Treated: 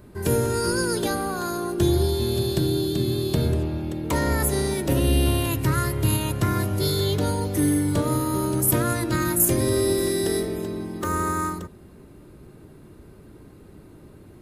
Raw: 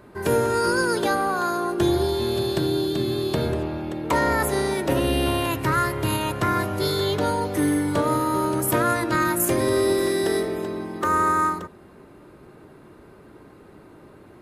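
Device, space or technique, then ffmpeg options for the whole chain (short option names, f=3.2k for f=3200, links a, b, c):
smiley-face EQ: -af "lowshelf=f=110:g=8,equalizer=f=1.1k:t=o:w=2.9:g=-9,highshelf=f=7.2k:g=4,volume=2dB"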